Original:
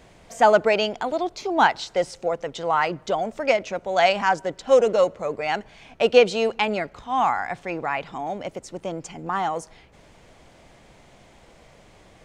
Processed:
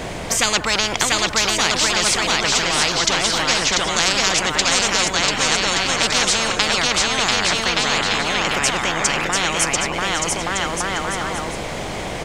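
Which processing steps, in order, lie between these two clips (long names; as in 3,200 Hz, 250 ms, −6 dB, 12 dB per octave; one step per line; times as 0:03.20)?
bouncing-ball delay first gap 690 ms, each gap 0.7×, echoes 5
every bin compressed towards the loudest bin 10 to 1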